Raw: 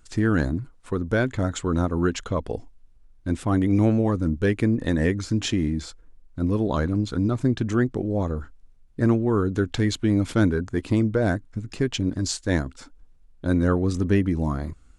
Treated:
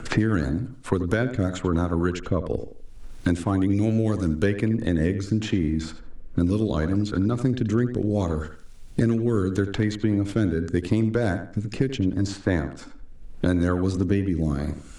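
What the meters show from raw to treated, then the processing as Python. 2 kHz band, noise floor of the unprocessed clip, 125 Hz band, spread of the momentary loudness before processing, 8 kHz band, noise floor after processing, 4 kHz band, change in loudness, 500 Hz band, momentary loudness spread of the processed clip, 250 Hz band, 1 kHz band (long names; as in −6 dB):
−1.5 dB, −53 dBFS, 0.0 dB, 9 LU, −5.5 dB, −42 dBFS, −3.5 dB, −0.5 dB, −0.5 dB, 7 LU, 0.0 dB, −2.0 dB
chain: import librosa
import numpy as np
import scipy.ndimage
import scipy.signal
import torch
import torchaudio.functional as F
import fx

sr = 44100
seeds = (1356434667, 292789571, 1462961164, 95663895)

y = fx.rotary_switch(x, sr, hz=8.0, then_hz=0.75, switch_at_s=0.52)
y = fx.echo_tape(y, sr, ms=82, feedback_pct=24, wet_db=-10.0, lp_hz=2700.0, drive_db=8.0, wow_cents=7)
y = fx.band_squash(y, sr, depth_pct=100)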